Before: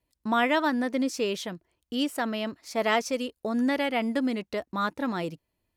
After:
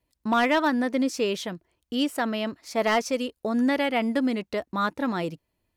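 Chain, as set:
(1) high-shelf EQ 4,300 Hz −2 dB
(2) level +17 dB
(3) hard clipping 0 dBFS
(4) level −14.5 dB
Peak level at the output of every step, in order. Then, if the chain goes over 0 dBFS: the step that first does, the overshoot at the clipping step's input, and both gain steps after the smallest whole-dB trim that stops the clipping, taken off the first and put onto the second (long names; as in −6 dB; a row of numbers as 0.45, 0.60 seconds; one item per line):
−10.5, +6.5, 0.0, −14.5 dBFS
step 2, 6.5 dB
step 2 +10 dB, step 4 −7.5 dB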